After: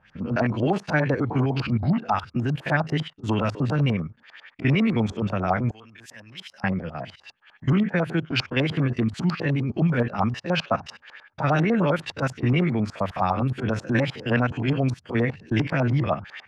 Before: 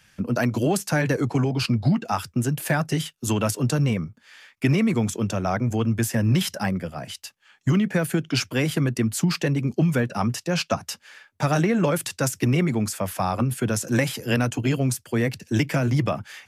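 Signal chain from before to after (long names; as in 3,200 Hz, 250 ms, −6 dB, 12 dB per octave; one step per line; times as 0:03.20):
spectrum averaged block by block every 50 ms
auto-filter low-pass saw up 10 Hz 700–4,300 Hz
0:05.71–0:06.64: first-order pre-emphasis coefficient 0.97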